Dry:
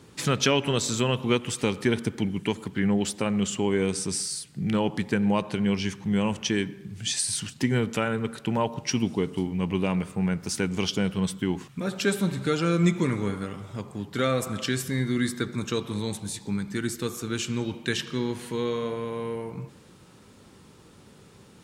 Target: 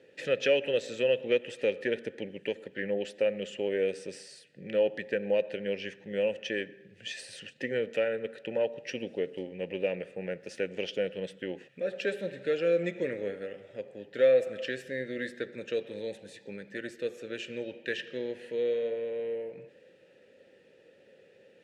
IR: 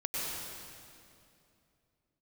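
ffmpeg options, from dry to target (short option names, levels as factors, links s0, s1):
-filter_complex "[0:a]aeval=exprs='0.335*(cos(1*acos(clip(val(0)/0.335,-1,1)))-cos(1*PI/2))+0.0133*(cos(6*acos(clip(val(0)/0.335,-1,1)))-cos(6*PI/2))':c=same,asplit=3[s0][s1][s2];[s0]bandpass=f=530:t=q:w=8,volume=1[s3];[s1]bandpass=f=1840:t=q:w=8,volume=0.501[s4];[s2]bandpass=f=2480:t=q:w=8,volume=0.355[s5];[s3][s4][s5]amix=inputs=3:normalize=0,volume=2.24"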